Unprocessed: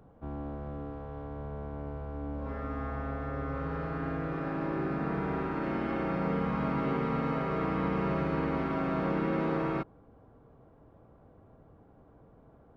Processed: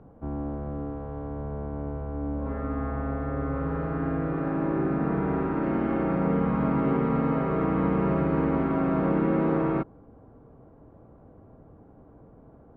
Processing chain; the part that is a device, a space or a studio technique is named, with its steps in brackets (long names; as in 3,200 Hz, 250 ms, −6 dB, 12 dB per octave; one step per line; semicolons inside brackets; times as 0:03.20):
phone in a pocket (low-pass filter 3,400 Hz 12 dB per octave; parametric band 270 Hz +2.5 dB 0.77 octaves; high-shelf EQ 2,100 Hz −11.5 dB)
level +5.5 dB